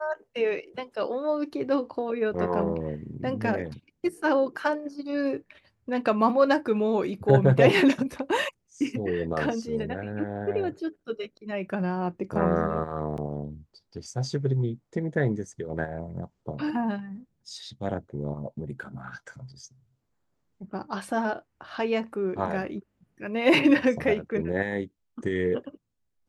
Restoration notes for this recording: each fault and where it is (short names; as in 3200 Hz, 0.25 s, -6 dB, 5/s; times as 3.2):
13.17–13.18 gap 9 ms